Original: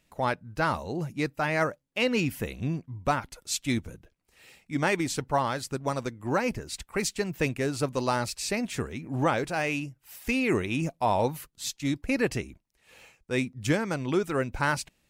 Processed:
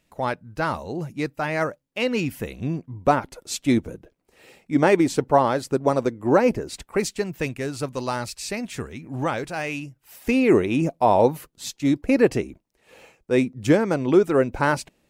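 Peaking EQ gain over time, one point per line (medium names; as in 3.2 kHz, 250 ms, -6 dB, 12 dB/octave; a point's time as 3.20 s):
peaking EQ 420 Hz 2.6 oct
2.49 s +3 dB
3.17 s +12 dB
6.75 s +12 dB
7.47 s 0 dB
9.82 s 0 dB
10.30 s +10.5 dB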